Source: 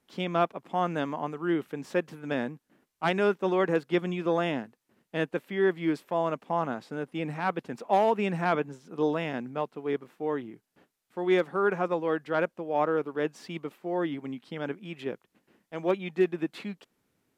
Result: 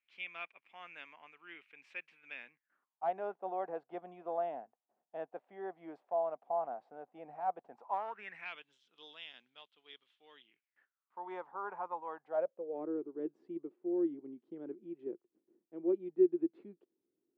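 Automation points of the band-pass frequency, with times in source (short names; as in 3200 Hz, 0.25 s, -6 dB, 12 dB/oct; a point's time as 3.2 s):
band-pass, Q 6.8
2.5 s 2400 Hz
3.05 s 720 Hz
7.71 s 720 Hz
8.64 s 3300 Hz
10.42 s 3300 Hz
11.2 s 920 Hz
12.15 s 920 Hz
12.83 s 350 Hz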